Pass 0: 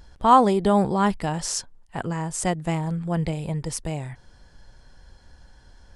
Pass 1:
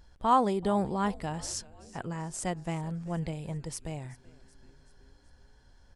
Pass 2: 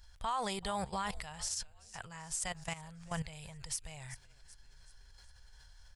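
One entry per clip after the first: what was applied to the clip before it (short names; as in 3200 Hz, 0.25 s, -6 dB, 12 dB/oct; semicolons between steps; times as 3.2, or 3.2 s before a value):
frequency-shifting echo 0.38 s, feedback 57%, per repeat -140 Hz, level -21 dB; gain -8.5 dB
level quantiser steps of 16 dB; passive tone stack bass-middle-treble 10-0-10; limiter -40 dBFS, peak gain reduction 9.5 dB; gain +14 dB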